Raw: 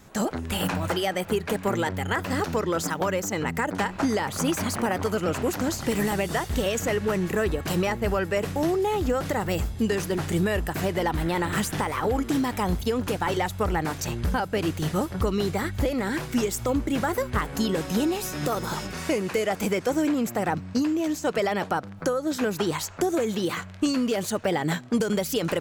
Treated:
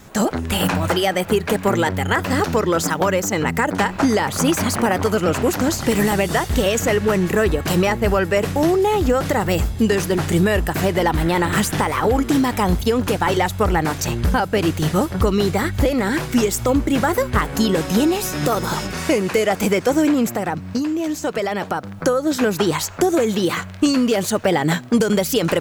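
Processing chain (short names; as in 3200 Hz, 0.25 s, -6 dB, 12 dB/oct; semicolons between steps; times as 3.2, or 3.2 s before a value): bit-crush 11-bit; 20.27–21.84 compressor 2:1, threshold -30 dBFS, peak gain reduction 5.5 dB; gain +7.5 dB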